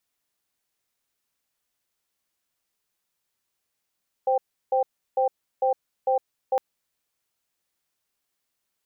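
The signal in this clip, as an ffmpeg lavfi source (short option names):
-f lavfi -i "aevalsrc='0.0841*(sin(2*PI*522*t)+sin(2*PI*786*t))*clip(min(mod(t,0.45),0.11-mod(t,0.45))/0.005,0,1)':d=2.31:s=44100"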